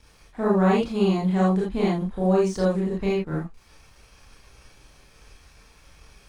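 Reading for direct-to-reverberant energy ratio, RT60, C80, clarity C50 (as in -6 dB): -6.5 dB, not exponential, 10.5 dB, 1.5 dB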